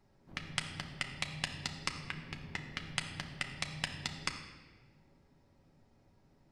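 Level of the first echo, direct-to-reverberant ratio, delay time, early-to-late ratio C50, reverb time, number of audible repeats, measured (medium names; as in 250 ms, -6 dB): no echo, 3.0 dB, no echo, 8.0 dB, 1.4 s, no echo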